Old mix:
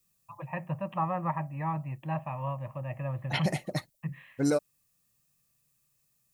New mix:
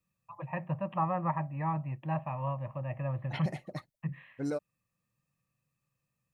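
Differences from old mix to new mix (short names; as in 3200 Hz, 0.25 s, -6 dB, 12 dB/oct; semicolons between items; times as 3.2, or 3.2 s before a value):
second voice -7.5 dB; master: add high shelf 5000 Hz -12 dB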